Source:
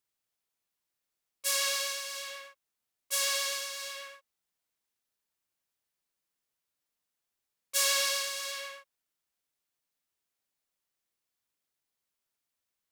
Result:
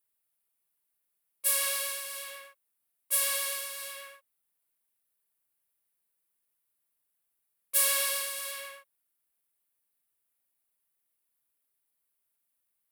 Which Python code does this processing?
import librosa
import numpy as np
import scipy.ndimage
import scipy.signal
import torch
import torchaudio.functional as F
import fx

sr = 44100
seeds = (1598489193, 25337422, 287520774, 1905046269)

y = fx.curve_eq(x, sr, hz=(2500.0, 6500.0, 10000.0), db=(0, -6, 10))
y = y * 10.0 ** (-1.5 / 20.0)